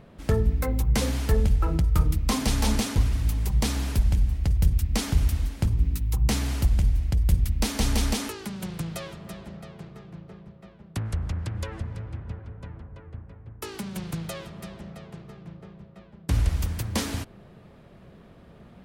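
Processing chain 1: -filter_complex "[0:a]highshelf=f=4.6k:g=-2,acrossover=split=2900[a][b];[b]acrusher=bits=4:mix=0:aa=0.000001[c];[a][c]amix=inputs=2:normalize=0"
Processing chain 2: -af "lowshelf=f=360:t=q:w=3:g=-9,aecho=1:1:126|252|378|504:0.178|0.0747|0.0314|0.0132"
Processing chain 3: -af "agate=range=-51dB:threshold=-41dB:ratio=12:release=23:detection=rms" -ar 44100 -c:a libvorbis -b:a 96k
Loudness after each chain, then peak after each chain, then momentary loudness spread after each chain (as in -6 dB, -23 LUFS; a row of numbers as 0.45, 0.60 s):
-26.5, -32.0, -26.5 LUFS; -10.5, -12.5, -10.5 dBFS; 19, 20, 19 LU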